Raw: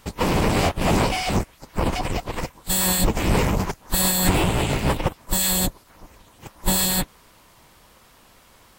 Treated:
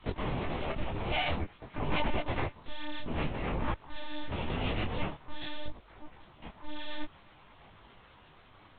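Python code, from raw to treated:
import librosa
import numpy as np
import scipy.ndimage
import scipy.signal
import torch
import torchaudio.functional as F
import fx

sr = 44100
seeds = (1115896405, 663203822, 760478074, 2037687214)

y = fx.over_compress(x, sr, threshold_db=-25.0, ratio=-1.0)
y = fx.lpc_monotone(y, sr, seeds[0], pitch_hz=300.0, order=10)
y = fx.detune_double(y, sr, cents=18)
y = y * 10.0 ** (-3.5 / 20.0)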